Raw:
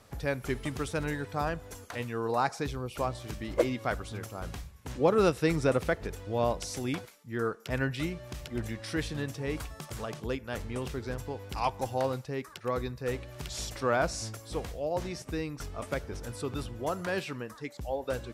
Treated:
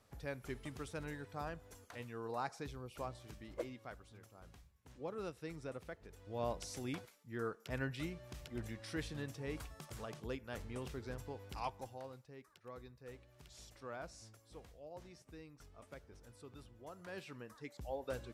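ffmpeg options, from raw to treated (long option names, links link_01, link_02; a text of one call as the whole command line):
ffmpeg -i in.wav -af "volume=9dB,afade=type=out:start_time=3.05:duration=0.9:silence=0.421697,afade=type=in:start_time=6.07:duration=0.47:silence=0.298538,afade=type=out:start_time=11.49:duration=0.51:silence=0.298538,afade=type=in:start_time=16.94:duration=0.84:silence=0.281838" out.wav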